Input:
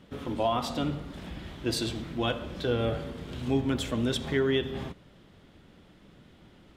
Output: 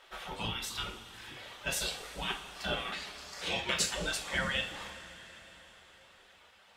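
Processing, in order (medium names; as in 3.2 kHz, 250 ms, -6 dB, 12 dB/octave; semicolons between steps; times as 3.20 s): 2.92–3.95 s: frequency weighting D; spectral gate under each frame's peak -15 dB weak; reverb removal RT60 1.7 s; 0.45–1.37 s: peaking EQ 570 Hz -14.5 dB 1.2 oct; two-slope reverb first 0.34 s, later 4.7 s, from -18 dB, DRR 0.5 dB; trim +3.5 dB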